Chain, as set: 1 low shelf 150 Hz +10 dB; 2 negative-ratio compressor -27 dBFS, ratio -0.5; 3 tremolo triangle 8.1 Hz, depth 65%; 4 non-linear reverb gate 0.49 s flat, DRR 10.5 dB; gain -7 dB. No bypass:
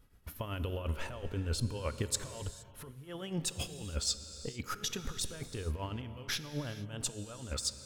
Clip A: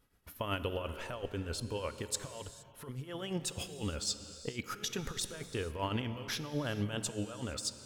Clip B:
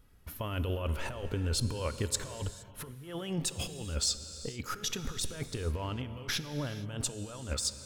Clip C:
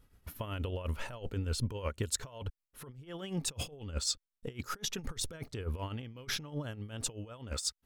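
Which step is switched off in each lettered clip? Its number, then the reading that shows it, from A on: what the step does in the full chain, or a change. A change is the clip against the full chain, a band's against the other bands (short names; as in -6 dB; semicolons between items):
1, 125 Hz band -4.0 dB; 3, loudness change +2.5 LU; 4, momentary loudness spread change +1 LU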